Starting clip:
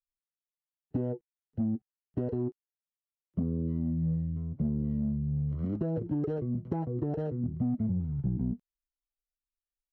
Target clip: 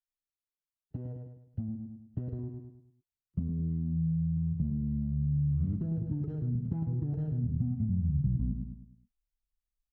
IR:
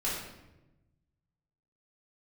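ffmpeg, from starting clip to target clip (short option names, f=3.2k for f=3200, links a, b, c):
-af "aecho=1:1:104|208|312|416|520:0.422|0.169|0.0675|0.027|0.0108,acompressor=threshold=-33dB:ratio=4,asubboost=boost=9.5:cutoff=160,volume=-7dB"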